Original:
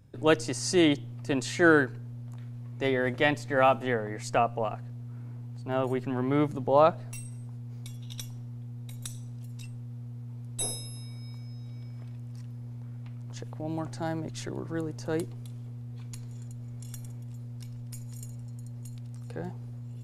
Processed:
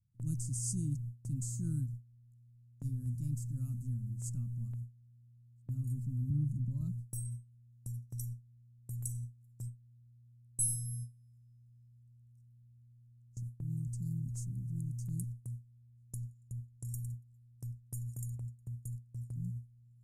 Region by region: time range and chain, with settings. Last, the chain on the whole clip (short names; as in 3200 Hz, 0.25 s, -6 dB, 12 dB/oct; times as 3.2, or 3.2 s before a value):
6.3–6.81 high shelf 4300 Hz -10.5 dB + three-band squash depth 40%
whole clip: inverse Chebyshev band-stop 410–3500 Hz, stop band 50 dB; gate with hold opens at -35 dBFS; gain +1 dB